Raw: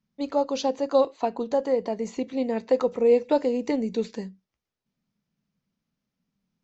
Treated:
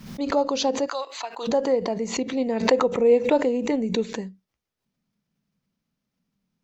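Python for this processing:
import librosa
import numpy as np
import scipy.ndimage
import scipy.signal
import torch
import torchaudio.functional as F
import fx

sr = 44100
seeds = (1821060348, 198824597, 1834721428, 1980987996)

y = fx.highpass(x, sr, hz=1200.0, slope=12, at=(0.86, 1.47), fade=0.02)
y = fx.peak_eq(y, sr, hz=4900.0, db=-9.0, octaves=0.38, at=(2.71, 4.27))
y = fx.pre_swell(y, sr, db_per_s=97.0)
y = y * 10.0 ** (1.5 / 20.0)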